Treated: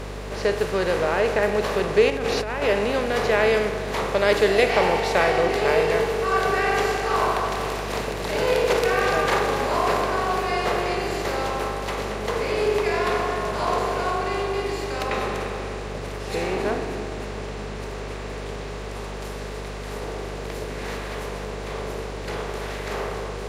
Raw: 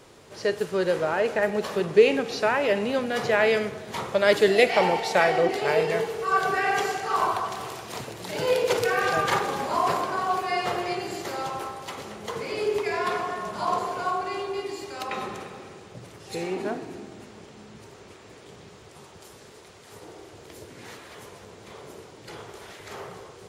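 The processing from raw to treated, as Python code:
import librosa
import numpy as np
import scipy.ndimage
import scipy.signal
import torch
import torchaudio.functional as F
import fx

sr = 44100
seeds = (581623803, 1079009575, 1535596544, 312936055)

y = fx.bin_compress(x, sr, power=0.6)
y = fx.over_compress(y, sr, threshold_db=-24.0, ratio=-1.0, at=(2.1, 2.62))
y = fx.add_hum(y, sr, base_hz=50, snr_db=11)
y = F.gain(torch.from_numpy(y), -2.5).numpy()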